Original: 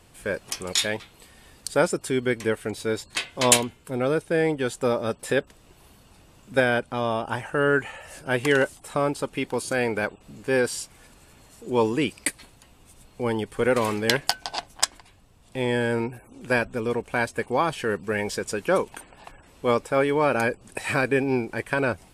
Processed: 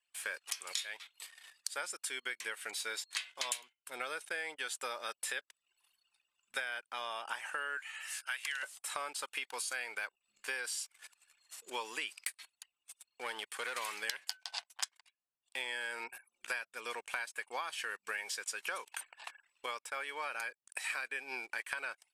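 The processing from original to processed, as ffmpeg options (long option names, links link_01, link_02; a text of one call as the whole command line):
ffmpeg -i in.wav -filter_complex "[0:a]asettb=1/sr,asplit=3[link_01][link_02][link_03];[link_01]atrim=end=7.774[link_04];[link_02]atrim=start=7.77:end=8.63,asetpts=PTS-STARTPTS,afade=type=in:duration=0.004:curve=qsin,afade=type=out:start_time=0.856:duration=0.004:curve=qsin,highpass=1300[link_05];[link_03]atrim=start=8.626[link_06];[link_04][link_05]acrossfade=duration=0.004:curve1=hsin:curve2=qsin[link_07];[link_07][link_06]acrossfade=duration=0.004:curve1=qsin:curve2=hsin,asplit=3[link_08][link_09][link_10];[link_08]afade=type=out:start_time=12.22:duration=0.02[link_11];[link_09]aeval=exprs='(tanh(10*val(0)+0.3)-tanh(0.3))/10':channel_layout=same,afade=type=in:start_time=12.22:duration=0.02,afade=type=out:start_time=13.76:duration=0.02[link_12];[link_10]afade=type=in:start_time=13.76:duration=0.02[link_13];[link_11][link_12][link_13]amix=inputs=3:normalize=0,asplit=3[link_14][link_15][link_16];[link_14]atrim=end=19.662[link_17];[link_15]atrim=start=19.658:end=20.902,asetpts=PTS-STARTPTS,volume=-6dB[link_18];[link_16]atrim=start=20.898[link_19];[link_17][link_18]acrossfade=duration=0.004:curve1=hsin:curve2=hsin[link_20];[link_20][link_19]acrossfade=duration=0.004:curve1=hsin:curve2=hsin,highpass=1500,anlmdn=0.001,acompressor=threshold=-40dB:ratio=8,volume=4dB" out.wav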